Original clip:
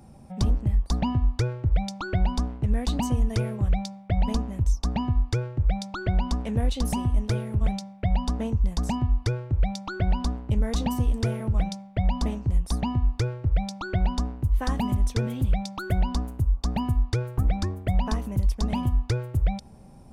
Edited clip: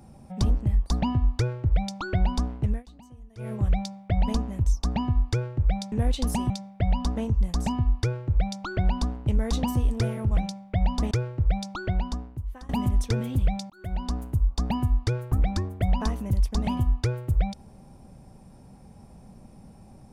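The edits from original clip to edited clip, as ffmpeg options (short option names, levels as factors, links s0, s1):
-filter_complex "[0:a]asplit=8[s0][s1][s2][s3][s4][s5][s6][s7];[s0]atrim=end=2.83,asetpts=PTS-STARTPTS,afade=t=out:st=2.67:d=0.16:silence=0.0668344[s8];[s1]atrim=start=2.83:end=3.37,asetpts=PTS-STARTPTS,volume=0.0668[s9];[s2]atrim=start=3.37:end=5.922,asetpts=PTS-STARTPTS,afade=t=in:d=0.16:silence=0.0668344[s10];[s3]atrim=start=6.498:end=7.082[s11];[s4]atrim=start=7.728:end=12.342[s12];[s5]atrim=start=13.168:end=14.75,asetpts=PTS-STARTPTS,afade=t=out:st=0.582:d=1:silence=0.0749894[s13];[s6]atrim=start=14.75:end=15.76,asetpts=PTS-STARTPTS,afade=t=in:d=0.004:c=hsin:silence=0.0749894,afade=t=out:st=1.006:d=0.004:c=hsin[s14];[s7]atrim=start=15.76,asetpts=PTS-STARTPTS,afade=t=in:d=0.53[s15];[s8][s9][s10]concat=n=3:v=0:a=1[s16];[s16][s11]acrossfade=d=0.004:c1=hsin:c2=hsin[s17];[s17][s12]acrossfade=d=0.004:c1=hsin:c2=hsin[s18];[s13][s14][s15]concat=n=3:v=0:a=1[s19];[s18][s19]acrossfade=d=0.004:c1=hsin:c2=hsin"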